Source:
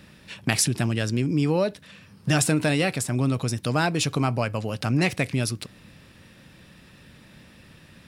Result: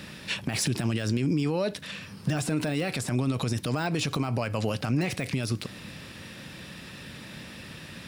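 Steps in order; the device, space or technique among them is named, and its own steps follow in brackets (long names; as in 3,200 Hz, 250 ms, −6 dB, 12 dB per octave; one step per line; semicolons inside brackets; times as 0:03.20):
broadcast voice chain (high-pass filter 87 Hz 6 dB per octave; de-essing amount 80%; downward compressor 4 to 1, threshold −26 dBFS, peak gain reduction 7.5 dB; parametric band 4,500 Hz +3 dB 2.2 octaves; brickwall limiter −25.5 dBFS, peak gain reduction 11 dB)
level +7.5 dB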